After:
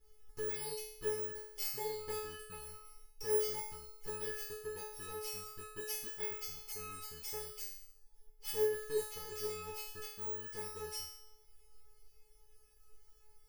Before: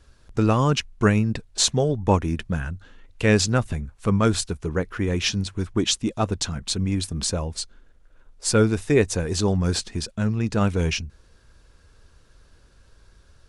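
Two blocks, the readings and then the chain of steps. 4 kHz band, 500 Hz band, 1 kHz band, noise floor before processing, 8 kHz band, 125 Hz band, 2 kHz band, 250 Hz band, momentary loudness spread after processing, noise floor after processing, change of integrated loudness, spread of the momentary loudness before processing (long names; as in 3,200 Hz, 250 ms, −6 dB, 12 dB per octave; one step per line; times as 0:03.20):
−19.5 dB, −14.0 dB, −19.0 dB, −56 dBFS, −16.0 dB, −33.5 dB, −18.0 dB, −35.5 dB, 12 LU, −64 dBFS, −16.5 dB, 9 LU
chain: samples in bit-reversed order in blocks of 32 samples
downward compressor 2 to 1, threshold −34 dBFS, peak gain reduction 12 dB
tuned comb filter 430 Hz, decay 0.7 s, mix 100%
level +11 dB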